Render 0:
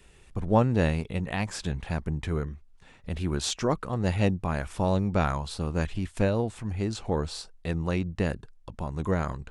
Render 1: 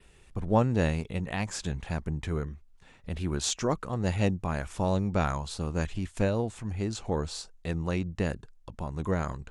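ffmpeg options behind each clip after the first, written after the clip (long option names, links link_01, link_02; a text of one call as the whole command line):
ffmpeg -i in.wav -af "adynamicequalizer=threshold=0.00158:dfrequency=6800:dqfactor=2.7:tfrequency=6800:tqfactor=2.7:attack=5:release=100:ratio=0.375:range=3:mode=boostabove:tftype=bell,volume=-2dB" out.wav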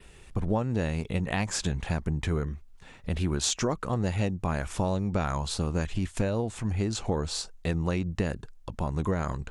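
ffmpeg -i in.wav -af "acompressor=threshold=-29dB:ratio=10,volume=6dB" out.wav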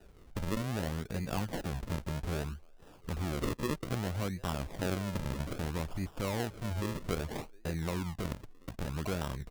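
ffmpeg -i in.wav -filter_complex "[0:a]acrossover=split=340|730|1900[link_01][link_02][link_03][link_04];[link_01]alimiter=limit=-23.5dB:level=0:latency=1:release=18[link_05];[link_02]aecho=1:1:720|1440|2160:0.0891|0.0339|0.0129[link_06];[link_05][link_06][link_03][link_04]amix=inputs=4:normalize=0,acrusher=samples=40:mix=1:aa=0.000001:lfo=1:lforange=40:lforate=0.62,volume=-5.5dB" out.wav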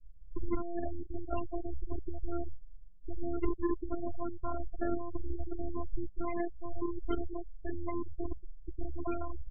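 ffmpeg -i in.wav -af "afftfilt=real='hypot(re,im)*cos(PI*b)':imag='0':win_size=512:overlap=0.75,lowshelf=frequency=63:gain=8.5,afftfilt=real='re*gte(hypot(re,im),0.0316)':imag='im*gte(hypot(re,im),0.0316)':win_size=1024:overlap=0.75,volume=5dB" out.wav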